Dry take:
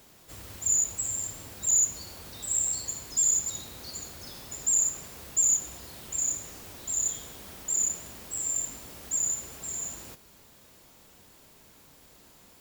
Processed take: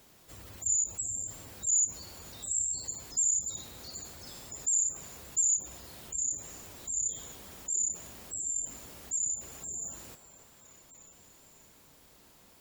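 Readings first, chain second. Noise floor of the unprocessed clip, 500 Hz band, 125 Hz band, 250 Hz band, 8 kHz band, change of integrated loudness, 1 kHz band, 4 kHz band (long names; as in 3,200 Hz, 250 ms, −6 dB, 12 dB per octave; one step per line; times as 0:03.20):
−56 dBFS, −5.0 dB, −4.0 dB, −4.5 dB, −3.5 dB, −3.5 dB, −5.0 dB, −5.0 dB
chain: echo through a band-pass that steps 296 ms, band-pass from 650 Hz, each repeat 0.7 octaves, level −9 dB
gate on every frequency bin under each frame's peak −25 dB strong
level −3.5 dB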